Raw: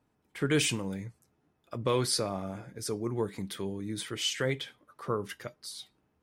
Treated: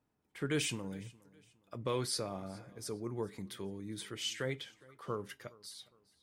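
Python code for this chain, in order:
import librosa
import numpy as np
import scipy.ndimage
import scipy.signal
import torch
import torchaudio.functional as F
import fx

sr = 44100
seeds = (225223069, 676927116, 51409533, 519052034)

y = fx.echo_feedback(x, sr, ms=412, feedback_pct=36, wet_db=-23)
y = y * 10.0 ** (-7.0 / 20.0)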